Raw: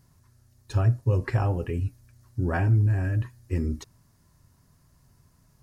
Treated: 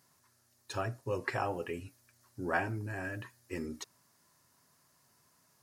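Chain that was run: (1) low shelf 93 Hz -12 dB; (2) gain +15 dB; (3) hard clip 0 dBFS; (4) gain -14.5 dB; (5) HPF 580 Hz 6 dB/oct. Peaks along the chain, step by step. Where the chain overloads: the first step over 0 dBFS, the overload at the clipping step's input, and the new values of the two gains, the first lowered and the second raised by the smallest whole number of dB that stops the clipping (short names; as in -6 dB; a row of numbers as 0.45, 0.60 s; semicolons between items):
-16.5, -1.5, -1.5, -16.0, -19.0 dBFS; no overload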